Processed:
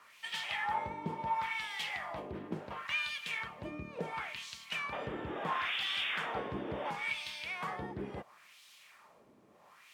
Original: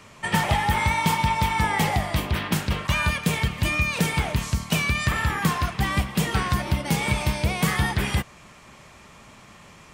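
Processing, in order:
sound drawn into the spectrogram noise, 0:04.92–0:06.91, 210–3,700 Hz −26 dBFS
background noise blue −42 dBFS
LFO wah 0.72 Hz 340–3,600 Hz, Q 2
level −5.5 dB

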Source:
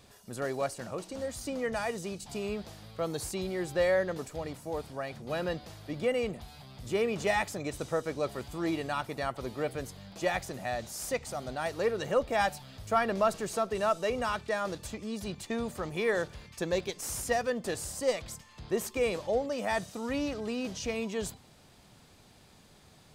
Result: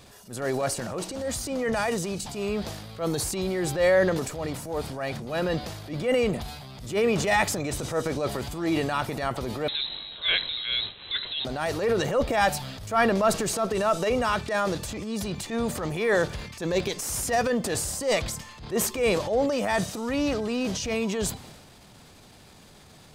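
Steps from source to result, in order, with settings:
transient designer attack −9 dB, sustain +6 dB
0:09.68–0:11.45: voice inversion scrambler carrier 4,000 Hz
level +7 dB

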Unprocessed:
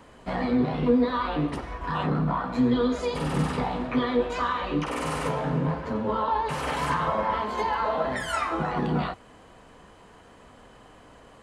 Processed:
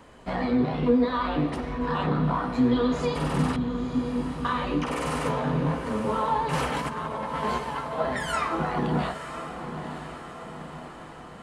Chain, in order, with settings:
0:03.56–0:04.45: inverse Chebyshev low-pass filter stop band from 1,800 Hz, stop band 80 dB
0:06.53–0:07.99: compressor whose output falls as the input rises −30 dBFS, ratio −0.5
feedback delay with all-pass diffusion 964 ms, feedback 58%, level −9.5 dB

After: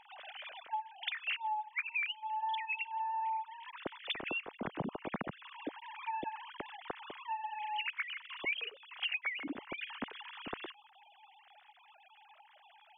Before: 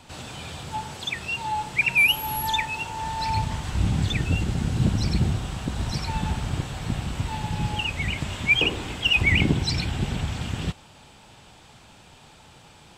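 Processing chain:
three sine waves on the formant tracks
downward compressor 8 to 1, threshold −35 dBFS, peak gain reduction 24.5 dB

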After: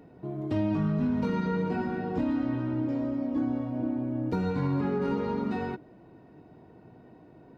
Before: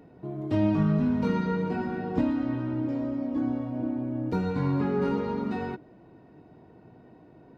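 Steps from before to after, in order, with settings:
brickwall limiter −20 dBFS, peak gain reduction 5 dB

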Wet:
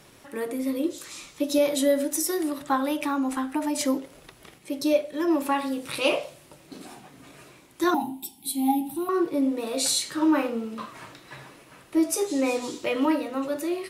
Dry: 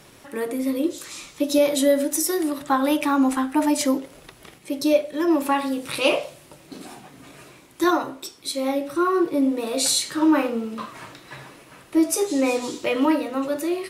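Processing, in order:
0:02.78–0:03.75: downward compressor, threshold −19 dBFS, peak gain reduction 5.5 dB
0:07.94–0:09.09: drawn EQ curve 150 Hz 0 dB, 230 Hz +13 dB, 550 Hz −23 dB, 820 Hz +11 dB, 1,200 Hz −25 dB, 3,100 Hz 0 dB, 5,900 Hz −10 dB, 11,000 Hz +12 dB
level −3.5 dB

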